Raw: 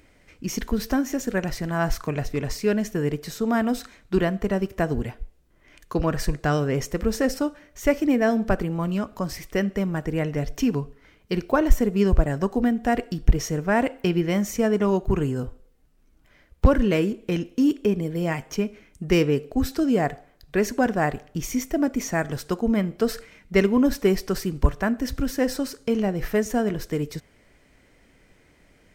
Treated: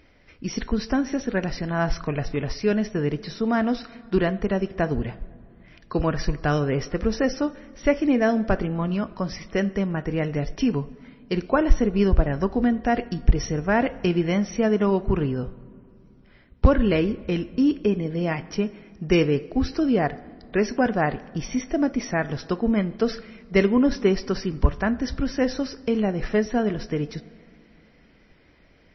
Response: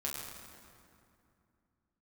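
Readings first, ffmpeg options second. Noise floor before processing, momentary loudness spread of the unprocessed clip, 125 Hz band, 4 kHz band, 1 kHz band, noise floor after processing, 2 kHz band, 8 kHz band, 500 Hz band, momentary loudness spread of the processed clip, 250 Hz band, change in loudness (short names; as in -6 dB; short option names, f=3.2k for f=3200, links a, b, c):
-59 dBFS, 8 LU, +0.5 dB, 0.0 dB, +0.5 dB, -55 dBFS, +0.5 dB, -6.0 dB, +0.5 dB, 8 LU, +0.5 dB, +0.5 dB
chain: -filter_complex "[0:a]asplit=2[a][b];[1:a]atrim=start_sample=2205,lowpass=6.7k[c];[b][c]afir=irnorm=-1:irlink=0,volume=-19dB[d];[a][d]amix=inputs=2:normalize=0" -ar 22050 -c:a libmp3lame -b:a 24k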